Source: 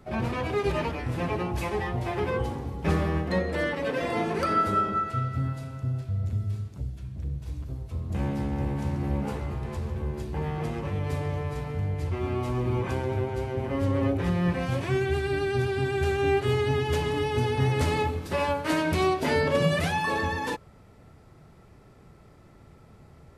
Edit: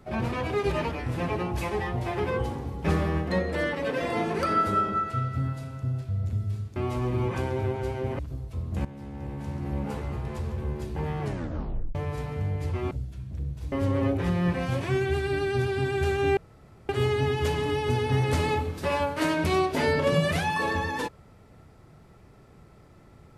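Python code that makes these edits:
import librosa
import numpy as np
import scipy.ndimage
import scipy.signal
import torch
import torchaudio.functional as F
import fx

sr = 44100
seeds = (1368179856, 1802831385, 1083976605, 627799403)

y = fx.edit(x, sr, fx.swap(start_s=6.76, length_s=0.81, other_s=12.29, other_length_s=1.43),
    fx.fade_in_from(start_s=8.23, length_s=1.29, floor_db=-15.5),
    fx.tape_stop(start_s=10.59, length_s=0.74),
    fx.insert_room_tone(at_s=16.37, length_s=0.52), tone=tone)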